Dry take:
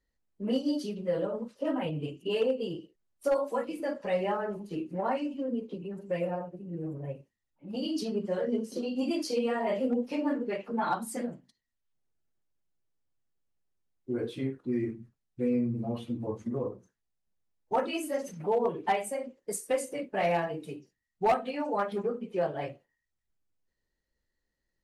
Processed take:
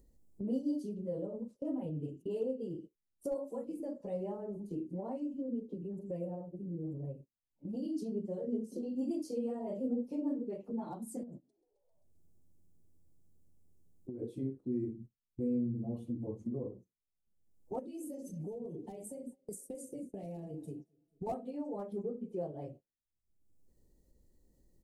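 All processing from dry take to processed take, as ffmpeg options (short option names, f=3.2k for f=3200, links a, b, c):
-filter_complex "[0:a]asettb=1/sr,asplit=3[a][b][c];[a]atrim=end=11.234[d];[b]atrim=start=11.23:end=14.22,asetpts=PTS-STARTPTS,afade=t=in:d=0.004:c=qsin,afade=t=out:st=2.986:d=0.004:c=qsin,acompressor=threshold=-40dB:ratio=10:attack=3.2:release=140:knee=1:detection=peak,asplit=6[e][f][g][h][i][j];[f]adelay=132,afreqshift=84,volume=-18dB[k];[g]adelay=264,afreqshift=168,volume=-22.7dB[l];[h]adelay=396,afreqshift=252,volume=-27.5dB[m];[i]adelay=528,afreqshift=336,volume=-32.2dB[n];[j]adelay=660,afreqshift=420,volume=-36.9dB[o];[e][k][l][m][n][o]amix=inputs=6:normalize=0,atrim=end_sample=131859[p];[c]atrim=start=14.216[q];[d][p]acrossfade=d=0.004:c1=hsin:c2=qsin[r];[r][q]acrossfade=d=0.004:c1=qsin:c2=hsin,asettb=1/sr,asplit=3[s][t][u];[s]atrim=end=17.794[v];[t]atrim=start=17.79:end=21.27,asetpts=PTS-STARTPTS,afade=t=in:d=0.004:c=qsin,afade=t=out:st=3.476:d=0.004:c=qsin,equalizer=f=1.1k:w=0.82:g=-14,acompressor=threshold=-37dB:ratio=2:attack=3.2:release=140:knee=1:detection=peak,aecho=1:1:222|444|666:0.1|0.035|0.0123,atrim=end_sample=153468[w];[u]atrim=start=21.266[x];[v][w]acrossfade=d=0.004:c1=hsin:c2=qsin[y];[y][x]acrossfade=d=0.004:c1=qsin:c2=hsin,agate=range=-18dB:threshold=-47dB:ratio=16:detection=peak,acompressor=mode=upward:threshold=-30dB:ratio=2.5,firequalizer=gain_entry='entry(300,0);entry(1500,-26);entry(7500,-6)':delay=0.05:min_phase=1,volume=-4.5dB"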